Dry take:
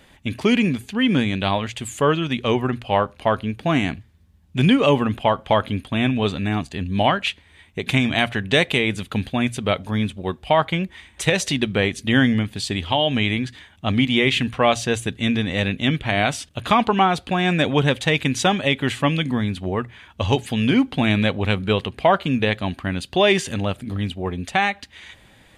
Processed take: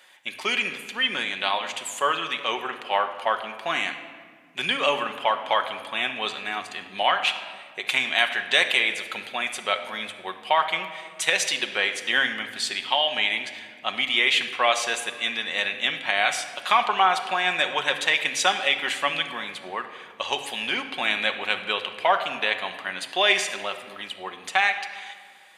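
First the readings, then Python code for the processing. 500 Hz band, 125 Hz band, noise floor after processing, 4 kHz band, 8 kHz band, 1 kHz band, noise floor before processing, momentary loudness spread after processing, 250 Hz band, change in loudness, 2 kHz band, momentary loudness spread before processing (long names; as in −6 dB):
−8.0 dB, −28.5 dB, −46 dBFS, +1.0 dB, +0.5 dB, −1.5 dB, −53 dBFS, 12 LU, −20.5 dB, −3.0 dB, +1.0 dB, 9 LU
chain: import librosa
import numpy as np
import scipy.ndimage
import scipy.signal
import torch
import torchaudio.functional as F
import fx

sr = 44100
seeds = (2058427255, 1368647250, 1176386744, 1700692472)

y = scipy.signal.sosfilt(scipy.signal.butter(2, 860.0, 'highpass', fs=sr, output='sos'), x)
y = fx.room_shoebox(y, sr, seeds[0], volume_m3=2600.0, walls='mixed', distance_m=1.0)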